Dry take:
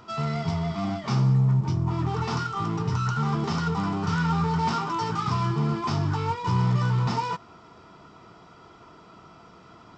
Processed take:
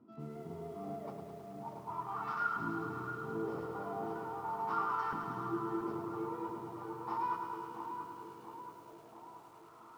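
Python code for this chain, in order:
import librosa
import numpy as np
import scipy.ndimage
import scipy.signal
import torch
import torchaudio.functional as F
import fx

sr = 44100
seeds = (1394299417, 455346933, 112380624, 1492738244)

p1 = fx.over_compress(x, sr, threshold_db=-26.0, ratio=-0.5)
p2 = fx.filter_lfo_bandpass(p1, sr, shape='saw_up', hz=0.39, low_hz=260.0, high_hz=1500.0, q=4.3)
p3 = p2 + fx.echo_filtered(p2, sr, ms=681, feedback_pct=66, hz=1300.0, wet_db=-6.0, dry=0)
p4 = fx.echo_crushed(p3, sr, ms=106, feedback_pct=80, bits=10, wet_db=-7.0)
y = F.gain(torch.from_numpy(p4), -3.5).numpy()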